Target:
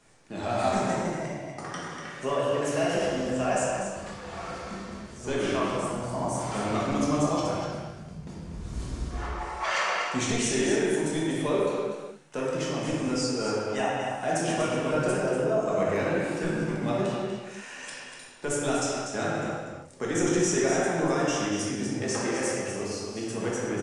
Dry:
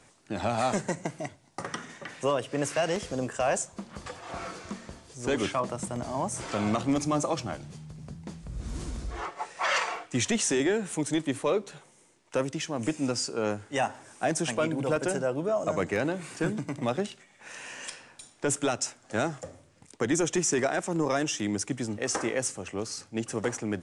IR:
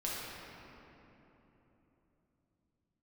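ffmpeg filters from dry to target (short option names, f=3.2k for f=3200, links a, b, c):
-filter_complex "[0:a]aecho=1:1:243:0.398[a];[1:a]atrim=start_sample=2205,afade=t=out:st=0.43:d=0.01,atrim=end_sample=19404,asetrate=48510,aresample=44100[b];[a][b]afir=irnorm=-1:irlink=0,volume=-1.5dB"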